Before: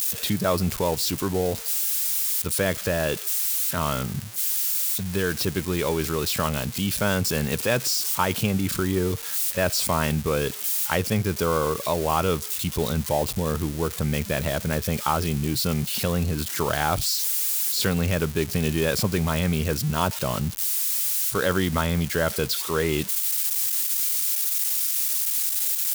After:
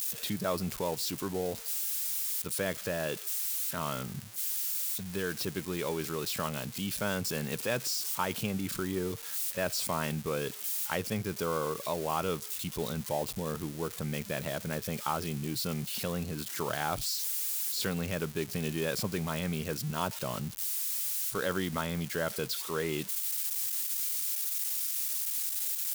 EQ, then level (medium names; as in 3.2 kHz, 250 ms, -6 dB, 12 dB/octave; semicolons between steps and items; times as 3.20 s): peaking EQ 73 Hz -13.5 dB 0.63 oct; -8.5 dB